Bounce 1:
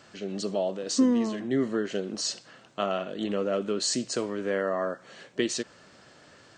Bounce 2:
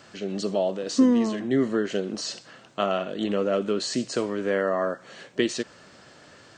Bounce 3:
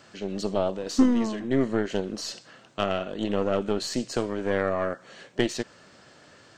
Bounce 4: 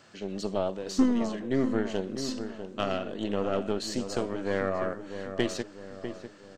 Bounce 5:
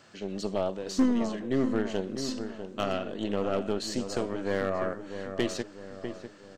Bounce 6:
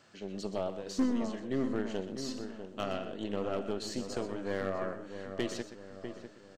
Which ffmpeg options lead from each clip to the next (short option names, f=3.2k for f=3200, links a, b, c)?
-filter_complex "[0:a]acrossover=split=3800[a][b];[b]acompressor=threshold=-37dB:ratio=4:attack=1:release=60[c];[a][c]amix=inputs=2:normalize=0,volume=3.5dB"
-af "aeval=exprs='0.335*(cos(1*acos(clip(val(0)/0.335,-1,1)))-cos(1*PI/2))+0.0266*(cos(3*acos(clip(val(0)/0.335,-1,1)))-cos(3*PI/2))+0.0376*(cos(4*acos(clip(val(0)/0.335,-1,1)))-cos(4*PI/2))':c=same"
-filter_complex "[0:a]asplit=2[a][b];[b]adelay=648,lowpass=f=1.4k:p=1,volume=-8.5dB,asplit=2[c][d];[d]adelay=648,lowpass=f=1.4k:p=1,volume=0.51,asplit=2[e][f];[f]adelay=648,lowpass=f=1.4k:p=1,volume=0.51,asplit=2[g][h];[h]adelay=648,lowpass=f=1.4k:p=1,volume=0.51,asplit=2[i][j];[j]adelay=648,lowpass=f=1.4k:p=1,volume=0.51,asplit=2[k][l];[l]adelay=648,lowpass=f=1.4k:p=1,volume=0.51[m];[a][c][e][g][i][k][m]amix=inputs=7:normalize=0,volume=-3.5dB"
-af "asoftclip=type=hard:threshold=-17dB"
-af "aecho=1:1:124:0.251,volume=-5.5dB"